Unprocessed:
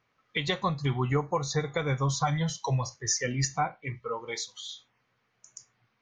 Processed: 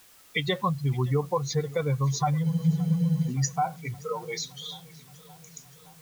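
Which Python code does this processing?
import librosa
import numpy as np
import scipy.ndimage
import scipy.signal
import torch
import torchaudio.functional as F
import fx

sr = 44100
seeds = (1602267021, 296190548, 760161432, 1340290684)

p1 = fx.spec_expand(x, sr, power=1.7)
p2 = fx.level_steps(p1, sr, step_db=10)
p3 = p1 + (p2 * librosa.db_to_amplitude(-1.5))
p4 = fx.dmg_noise_colour(p3, sr, seeds[0], colour='white', level_db=-54.0)
p5 = fx.spec_freeze(p4, sr, seeds[1], at_s=2.46, hold_s=0.82)
p6 = fx.echo_warbled(p5, sr, ms=570, feedback_pct=69, rate_hz=2.8, cents=62, wet_db=-23)
y = p6 * librosa.db_to_amplitude(-1.5)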